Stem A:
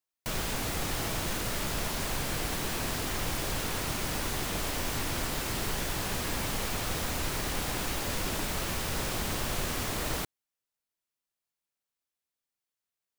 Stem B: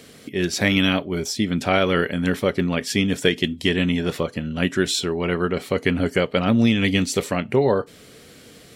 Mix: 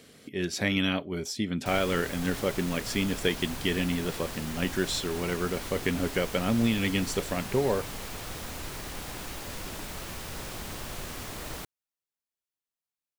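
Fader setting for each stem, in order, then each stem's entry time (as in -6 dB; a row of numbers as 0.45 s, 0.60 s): -6.0 dB, -8.0 dB; 1.40 s, 0.00 s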